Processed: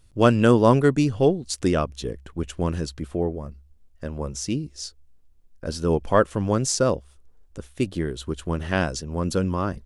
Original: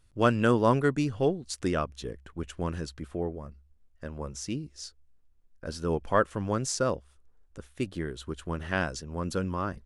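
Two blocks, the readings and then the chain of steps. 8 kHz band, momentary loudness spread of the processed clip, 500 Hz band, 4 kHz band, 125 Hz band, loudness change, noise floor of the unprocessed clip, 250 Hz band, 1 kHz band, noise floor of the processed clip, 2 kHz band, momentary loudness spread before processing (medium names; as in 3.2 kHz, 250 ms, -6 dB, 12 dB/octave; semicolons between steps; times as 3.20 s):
+7.5 dB, 18 LU, +7.0 dB, +6.5 dB, +7.5 dB, +6.5 dB, -62 dBFS, +7.5 dB, +4.5 dB, -55 dBFS, +3.0 dB, 18 LU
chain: peaking EQ 1.5 kHz -5 dB 1.4 oct; trim +7.5 dB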